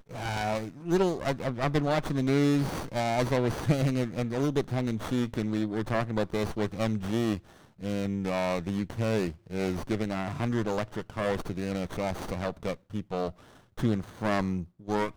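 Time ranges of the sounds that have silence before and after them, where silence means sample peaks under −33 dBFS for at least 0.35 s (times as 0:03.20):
0:07.83–0:13.30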